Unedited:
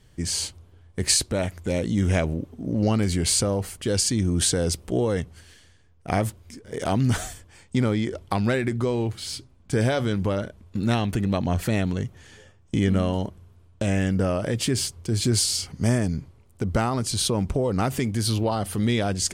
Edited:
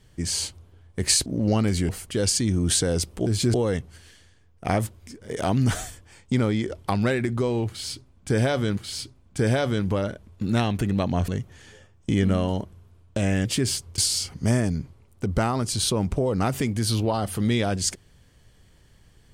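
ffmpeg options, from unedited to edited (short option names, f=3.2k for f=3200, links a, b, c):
-filter_complex "[0:a]asplit=9[a][b][c][d][e][f][g][h][i];[a]atrim=end=1.262[j];[b]atrim=start=2.608:end=3.242[k];[c]atrim=start=3.598:end=4.972[l];[d]atrim=start=15.078:end=15.362[m];[e]atrim=start=4.968:end=10.202[n];[f]atrim=start=9.108:end=11.622[o];[g]atrim=start=11.928:end=14.102[p];[h]atrim=start=14.548:end=15.082[q];[i]atrim=start=15.358[r];[j][k]acrossfade=d=0.004:c1=hsin:c2=hsin[s];[s][l]acrossfade=d=0.004:c1=hsin:c2=hsin[t];[t][m]acrossfade=d=0.004:c1=hsin:c2=hsin[u];[u][n]acrossfade=d=0.004:c1=hsin:c2=hsin[v];[v][o]acrossfade=d=0.004:c1=hsin:c2=hsin[w];[w][p]acrossfade=d=0.004:c1=hsin:c2=hsin[x];[x][q]acrossfade=d=0.004:c1=hsin:c2=hsin[y];[y][r]acrossfade=d=0.004:c1=hsin:c2=hsin"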